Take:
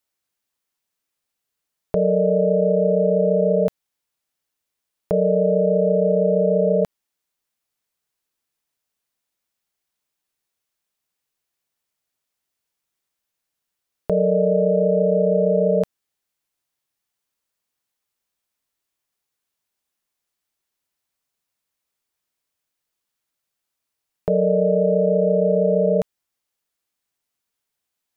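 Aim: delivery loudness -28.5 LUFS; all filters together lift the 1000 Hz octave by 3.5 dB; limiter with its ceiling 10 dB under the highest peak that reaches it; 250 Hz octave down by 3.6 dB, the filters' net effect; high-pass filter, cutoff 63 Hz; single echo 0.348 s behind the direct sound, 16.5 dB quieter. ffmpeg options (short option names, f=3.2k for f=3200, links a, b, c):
-af "highpass=63,equalizer=f=250:t=o:g=-6.5,equalizer=f=1k:t=o:g=7,alimiter=limit=-18dB:level=0:latency=1,aecho=1:1:348:0.15,volume=-2dB"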